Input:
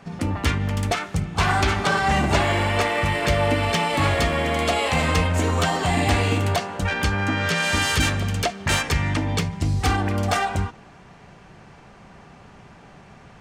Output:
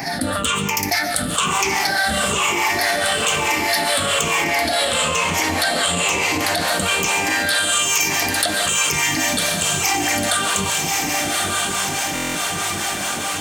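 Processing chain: moving spectral ripple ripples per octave 0.75, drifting -1.1 Hz, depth 17 dB; diffused feedback echo 1.165 s, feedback 49%, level -7.5 dB; reverb RT60 0.40 s, pre-delay 95 ms, DRR 14 dB; limiter -10.5 dBFS, peak gain reduction 7 dB; 4.44–6.68 high shelf 12000 Hz -10 dB; harmonic tremolo 4.7 Hz, depth 70%, crossover 420 Hz; RIAA curve recording; notches 50/100 Hz; stuck buffer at 12.14, samples 1024, times 8; fast leveller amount 70%; gain -1 dB

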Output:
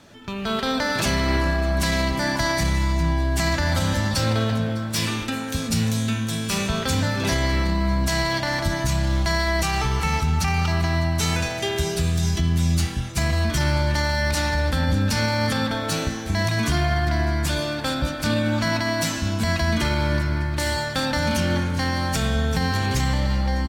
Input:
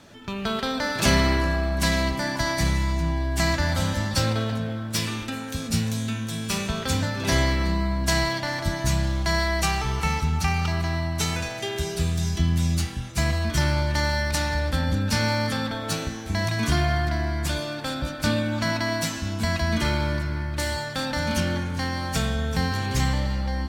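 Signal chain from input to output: limiter -17 dBFS, peak gain reduction 9 dB; AGC gain up to 4.5 dB; on a send: echo 0.604 s -21 dB

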